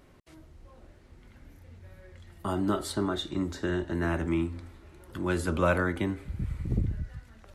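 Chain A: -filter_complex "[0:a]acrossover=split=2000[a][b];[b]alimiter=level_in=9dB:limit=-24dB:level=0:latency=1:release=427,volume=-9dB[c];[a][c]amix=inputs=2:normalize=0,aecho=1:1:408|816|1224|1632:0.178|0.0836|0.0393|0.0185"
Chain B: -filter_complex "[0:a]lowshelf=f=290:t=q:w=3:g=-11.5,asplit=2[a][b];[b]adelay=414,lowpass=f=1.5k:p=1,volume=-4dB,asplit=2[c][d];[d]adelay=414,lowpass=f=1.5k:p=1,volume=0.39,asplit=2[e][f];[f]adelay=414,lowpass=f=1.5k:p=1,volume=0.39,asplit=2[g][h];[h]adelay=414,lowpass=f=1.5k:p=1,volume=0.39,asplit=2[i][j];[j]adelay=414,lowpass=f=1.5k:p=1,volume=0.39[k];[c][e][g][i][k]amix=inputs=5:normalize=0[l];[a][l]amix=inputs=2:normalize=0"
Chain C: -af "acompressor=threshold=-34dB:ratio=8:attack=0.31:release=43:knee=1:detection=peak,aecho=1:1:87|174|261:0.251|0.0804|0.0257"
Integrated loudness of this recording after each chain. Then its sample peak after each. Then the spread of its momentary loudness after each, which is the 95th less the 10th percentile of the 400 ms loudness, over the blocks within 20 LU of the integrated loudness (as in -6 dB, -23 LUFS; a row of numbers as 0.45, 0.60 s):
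-31.0, -29.5, -40.5 LUFS; -12.5, -11.5, -28.5 dBFS; 14, 14, 16 LU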